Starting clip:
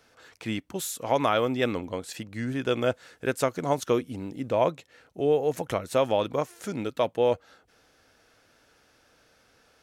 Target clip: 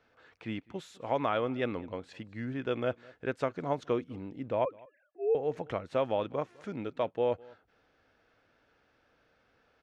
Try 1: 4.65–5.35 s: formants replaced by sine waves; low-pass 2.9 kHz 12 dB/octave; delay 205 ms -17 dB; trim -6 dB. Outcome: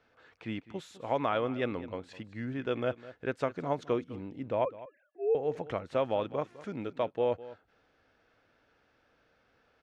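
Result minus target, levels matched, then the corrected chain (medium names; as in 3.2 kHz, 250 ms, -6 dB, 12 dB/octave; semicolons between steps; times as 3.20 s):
echo-to-direct +7 dB
4.65–5.35 s: formants replaced by sine waves; low-pass 2.9 kHz 12 dB/octave; delay 205 ms -24 dB; trim -6 dB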